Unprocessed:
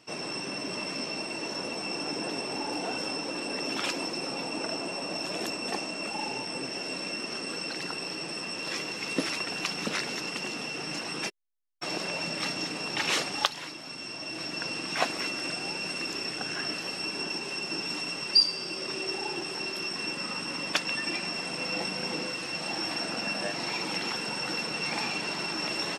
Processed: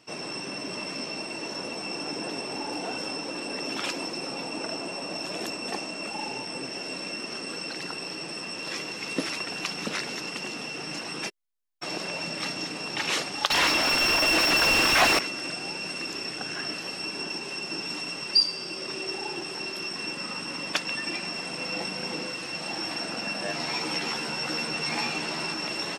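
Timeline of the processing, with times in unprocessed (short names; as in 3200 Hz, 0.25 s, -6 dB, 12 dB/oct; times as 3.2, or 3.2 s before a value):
13.5–15.19 overdrive pedal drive 34 dB, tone 3200 Hz, clips at -11 dBFS
23.47–25.54 doubler 13 ms -2.5 dB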